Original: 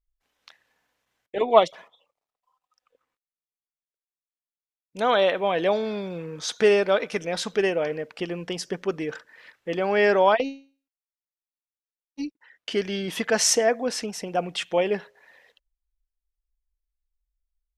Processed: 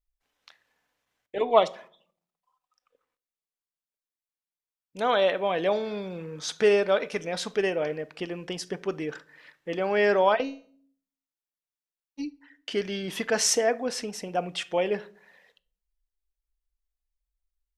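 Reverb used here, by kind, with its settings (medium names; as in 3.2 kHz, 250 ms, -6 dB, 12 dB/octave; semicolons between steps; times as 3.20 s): simulated room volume 570 m³, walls furnished, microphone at 0.35 m; trim -3 dB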